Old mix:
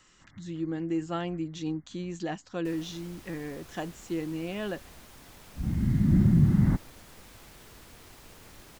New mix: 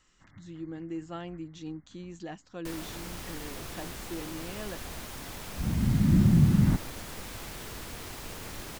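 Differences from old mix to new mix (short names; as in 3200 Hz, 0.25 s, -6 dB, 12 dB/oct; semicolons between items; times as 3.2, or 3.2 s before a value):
speech -7.0 dB; first sound +10.0 dB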